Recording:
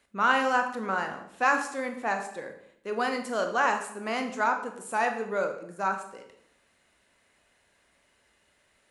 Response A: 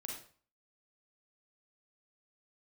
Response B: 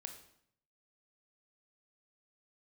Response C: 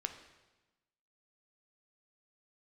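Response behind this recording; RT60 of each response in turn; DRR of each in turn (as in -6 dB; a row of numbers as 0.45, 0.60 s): B; 0.45, 0.65, 1.1 s; -1.0, 4.5, 6.0 dB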